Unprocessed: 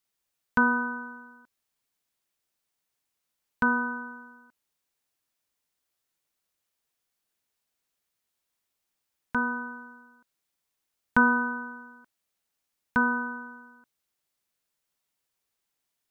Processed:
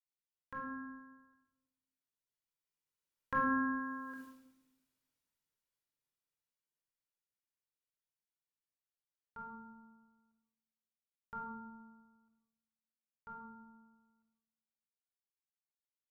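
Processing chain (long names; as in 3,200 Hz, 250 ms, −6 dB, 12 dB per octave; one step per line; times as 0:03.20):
source passing by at 0:04.21, 28 m/s, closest 1.7 metres
rectangular room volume 2,300 cubic metres, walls furnished, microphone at 4.7 metres
level +11.5 dB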